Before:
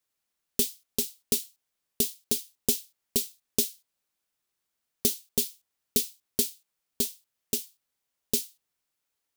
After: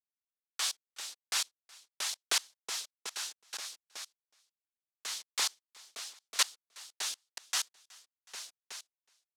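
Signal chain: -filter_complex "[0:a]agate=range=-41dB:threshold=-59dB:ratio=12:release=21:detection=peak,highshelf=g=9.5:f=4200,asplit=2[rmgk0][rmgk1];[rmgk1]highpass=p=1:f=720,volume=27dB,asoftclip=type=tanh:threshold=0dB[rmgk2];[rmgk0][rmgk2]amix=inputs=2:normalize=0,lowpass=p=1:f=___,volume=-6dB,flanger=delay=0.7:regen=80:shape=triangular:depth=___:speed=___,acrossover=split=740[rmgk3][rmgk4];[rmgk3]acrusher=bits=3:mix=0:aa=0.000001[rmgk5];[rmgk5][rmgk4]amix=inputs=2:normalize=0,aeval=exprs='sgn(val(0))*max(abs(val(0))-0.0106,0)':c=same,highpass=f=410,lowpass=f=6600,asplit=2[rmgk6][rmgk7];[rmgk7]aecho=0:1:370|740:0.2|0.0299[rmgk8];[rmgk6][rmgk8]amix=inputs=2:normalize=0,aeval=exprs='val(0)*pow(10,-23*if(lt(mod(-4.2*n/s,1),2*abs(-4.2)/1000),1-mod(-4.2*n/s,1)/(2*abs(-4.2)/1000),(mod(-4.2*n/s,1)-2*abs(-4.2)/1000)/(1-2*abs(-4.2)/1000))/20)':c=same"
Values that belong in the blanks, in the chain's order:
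5200, 9.7, 0.47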